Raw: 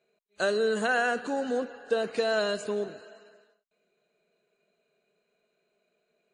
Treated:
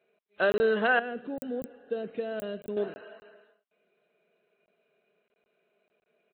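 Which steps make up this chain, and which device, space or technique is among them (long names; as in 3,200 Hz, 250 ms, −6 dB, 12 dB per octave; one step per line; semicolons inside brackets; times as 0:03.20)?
call with lost packets (high-pass filter 170 Hz 6 dB per octave; downsampling to 8,000 Hz; dropped packets of 20 ms random)
0:00.99–0:02.77: drawn EQ curve 160 Hz 0 dB, 600 Hz −9 dB, 950 Hz −18 dB, 2,300 Hz −14 dB, 5,400 Hz −11 dB, 8,200 Hz +10 dB
level +2.5 dB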